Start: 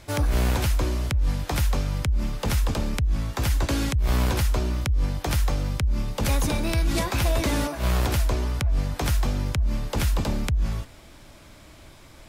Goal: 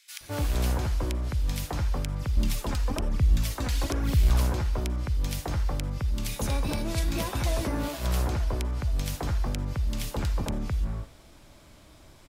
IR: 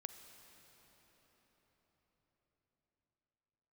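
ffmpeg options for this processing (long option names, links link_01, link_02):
-filter_complex "[0:a]asettb=1/sr,asplit=3[link_01][link_02][link_03];[link_01]atrim=end=2.164[link_04];[link_02]atrim=start=2.16:end=4.21,asetpts=PTS-STARTPTS,afade=type=in:duration=0.004:curve=qsin,afade=type=out:start_time=2.046:duration=0.004:curve=qsin,aphaser=in_gain=1:out_gain=1:delay=4.2:decay=0.53:speed=1.1:type=sinusoidal[link_05];[link_03]atrim=start=4.206[link_06];[link_04][link_05]acrossfade=duration=0.004:curve1=hsin:curve2=qsin[link_07];[link_07][link_06]acrossfade=duration=0.004:curve1=qsin:curve2=hsin,acrossover=split=2000[link_08][link_09];[link_08]adelay=210[link_10];[link_10][link_09]amix=inputs=2:normalize=0[link_11];[1:a]atrim=start_sample=2205,atrim=end_sample=4410[link_12];[link_11][link_12]afir=irnorm=-1:irlink=0"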